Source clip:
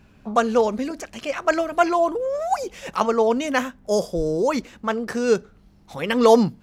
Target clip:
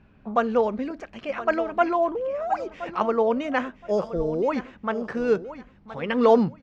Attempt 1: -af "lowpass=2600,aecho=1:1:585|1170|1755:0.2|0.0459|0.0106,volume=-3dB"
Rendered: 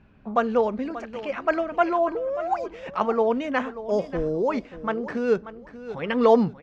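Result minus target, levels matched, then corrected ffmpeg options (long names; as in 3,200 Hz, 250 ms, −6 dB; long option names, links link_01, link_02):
echo 436 ms early
-af "lowpass=2600,aecho=1:1:1021|2042|3063:0.2|0.0459|0.0106,volume=-3dB"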